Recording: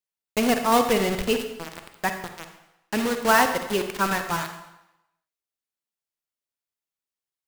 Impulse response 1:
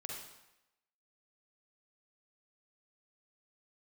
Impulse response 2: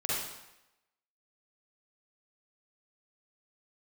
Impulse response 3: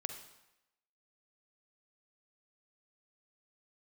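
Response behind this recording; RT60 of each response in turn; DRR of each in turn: 3; 0.90, 0.90, 0.90 s; -2.0, -8.0, 6.0 dB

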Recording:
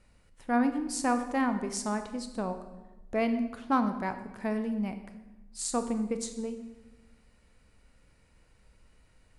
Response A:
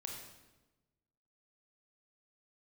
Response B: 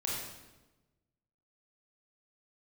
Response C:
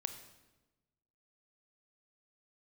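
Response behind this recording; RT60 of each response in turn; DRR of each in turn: C; 1.1, 1.1, 1.1 s; 0.0, -4.5, 8.0 dB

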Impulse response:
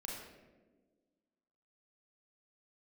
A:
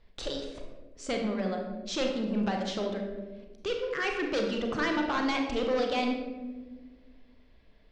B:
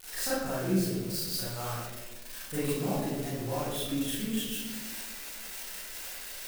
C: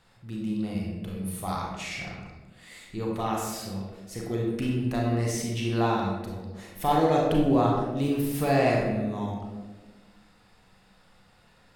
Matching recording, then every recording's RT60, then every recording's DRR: C; 1.4, 1.4, 1.4 s; 2.0, -11.0, -2.5 dB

